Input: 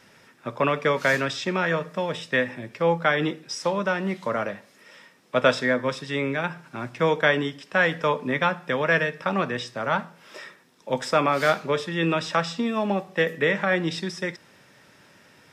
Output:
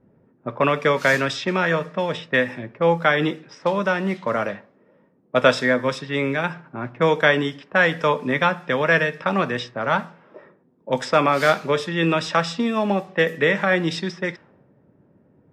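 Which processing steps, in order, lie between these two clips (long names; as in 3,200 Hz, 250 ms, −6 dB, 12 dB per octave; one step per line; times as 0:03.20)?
low-pass that shuts in the quiet parts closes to 360 Hz, open at −22 dBFS
level +3.5 dB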